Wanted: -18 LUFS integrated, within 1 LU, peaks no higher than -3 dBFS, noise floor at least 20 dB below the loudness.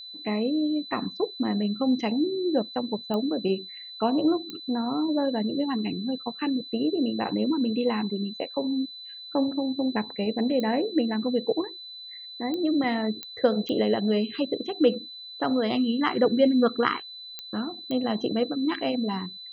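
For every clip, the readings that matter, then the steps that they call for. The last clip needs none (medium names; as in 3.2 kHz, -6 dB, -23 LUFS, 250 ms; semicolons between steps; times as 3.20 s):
clicks found 8; steady tone 4 kHz; tone level -39 dBFS; loudness -26.5 LUFS; peak level -7.5 dBFS; loudness target -18.0 LUFS
-> de-click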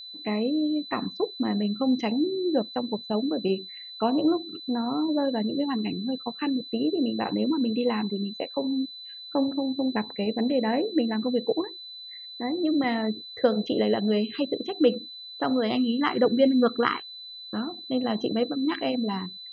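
clicks found 0; steady tone 4 kHz; tone level -39 dBFS
-> band-stop 4 kHz, Q 30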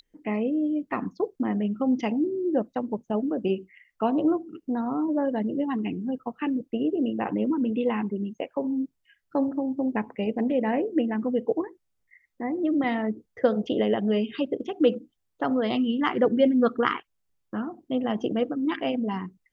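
steady tone not found; loudness -27.0 LUFS; peak level -7.5 dBFS; loudness target -18.0 LUFS
-> trim +9 dB; peak limiter -3 dBFS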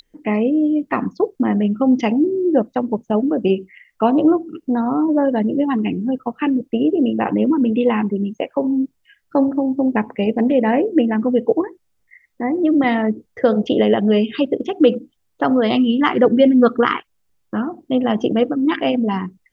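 loudness -18.0 LUFS; peak level -3.0 dBFS; noise floor -67 dBFS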